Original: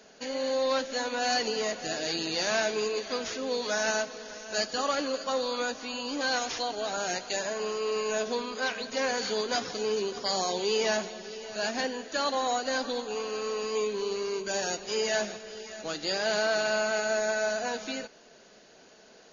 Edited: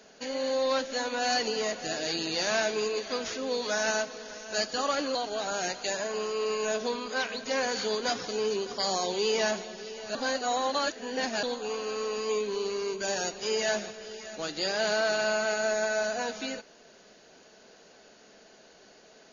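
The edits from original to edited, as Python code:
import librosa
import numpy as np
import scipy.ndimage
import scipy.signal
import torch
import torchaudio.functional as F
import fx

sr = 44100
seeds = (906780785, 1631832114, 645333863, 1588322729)

y = fx.edit(x, sr, fx.cut(start_s=5.15, length_s=1.46),
    fx.reverse_span(start_s=11.61, length_s=1.28), tone=tone)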